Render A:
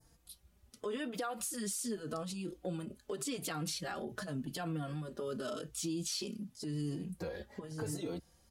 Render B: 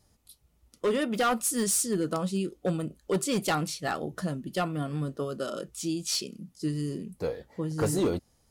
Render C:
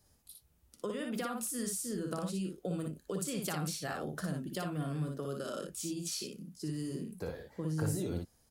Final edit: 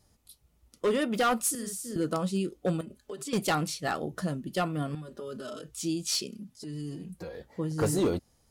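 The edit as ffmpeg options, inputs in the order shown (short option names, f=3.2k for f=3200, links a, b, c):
-filter_complex "[0:a]asplit=3[a][b][c];[1:a]asplit=5[d][e][f][g][h];[d]atrim=end=1.552[i];[2:a]atrim=start=1.548:end=1.962[j];[e]atrim=start=1.958:end=2.812[k];[a]atrim=start=2.808:end=3.332[l];[f]atrim=start=3.328:end=4.952[m];[b]atrim=start=4.948:end=5.742[n];[g]atrim=start=5.738:end=6.332[o];[c]atrim=start=6.328:end=7.352[p];[h]atrim=start=7.348[q];[i][j]acrossfade=d=0.004:c1=hsin:c2=hsin[r];[r][k]acrossfade=d=0.004:c1=hsin:c2=hsin[s];[s][l]acrossfade=d=0.004:c1=hsin:c2=hsin[t];[t][m]acrossfade=d=0.004:c1=hsin:c2=hsin[u];[u][n]acrossfade=d=0.004:c1=hsin:c2=hsin[v];[v][o]acrossfade=d=0.004:c1=hsin:c2=hsin[w];[w][p]acrossfade=d=0.004:c1=hsin:c2=hsin[x];[x][q]acrossfade=d=0.004:c1=hsin:c2=hsin"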